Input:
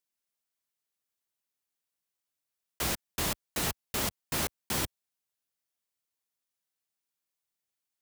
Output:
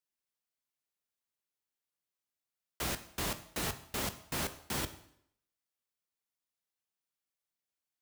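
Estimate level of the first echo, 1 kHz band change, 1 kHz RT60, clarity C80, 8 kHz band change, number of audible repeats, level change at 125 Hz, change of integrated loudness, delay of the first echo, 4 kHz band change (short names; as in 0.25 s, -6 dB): none, -3.5 dB, 0.70 s, 17.0 dB, -5.5 dB, none, -3.5 dB, -4.5 dB, none, -4.5 dB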